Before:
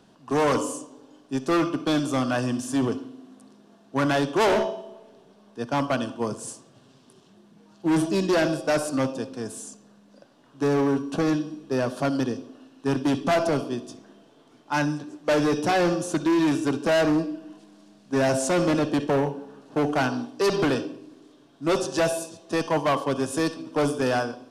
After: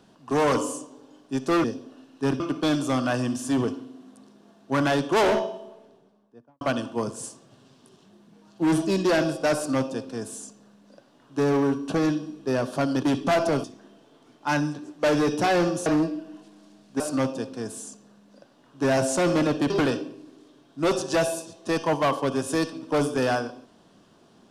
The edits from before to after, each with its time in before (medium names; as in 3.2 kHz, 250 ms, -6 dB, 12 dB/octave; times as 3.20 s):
4.81–5.85 s: studio fade out
8.80–10.64 s: copy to 18.16 s
12.27–13.03 s: move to 1.64 s
13.64–13.89 s: delete
16.11–17.02 s: delete
19.02–20.54 s: delete